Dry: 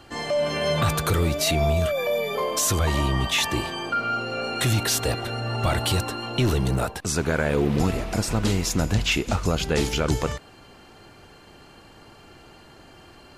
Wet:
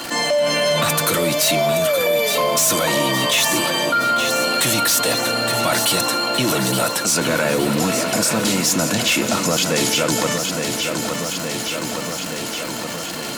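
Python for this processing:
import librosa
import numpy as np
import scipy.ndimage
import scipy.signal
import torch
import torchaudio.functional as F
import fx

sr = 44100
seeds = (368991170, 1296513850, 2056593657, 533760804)

p1 = scipy.signal.sosfilt(scipy.signal.bessel(8, 240.0, 'highpass', norm='mag', fs=sr, output='sos'), x)
p2 = fx.high_shelf(p1, sr, hz=4900.0, db=9.5)
p3 = fx.dmg_crackle(p2, sr, seeds[0], per_s=200.0, level_db=-32.0)
p4 = fx.fold_sine(p3, sr, drive_db=8, ceiling_db=-10.5)
p5 = p3 + (p4 * 10.0 ** (-9.0 / 20.0))
p6 = fx.notch_comb(p5, sr, f0_hz=400.0)
p7 = p6 + fx.echo_feedback(p6, sr, ms=867, feedback_pct=60, wet_db=-9.5, dry=0)
p8 = fx.env_flatten(p7, sr, amount_pct=50)
y = p8 * 10.0 ** (-1.0 / 20.0)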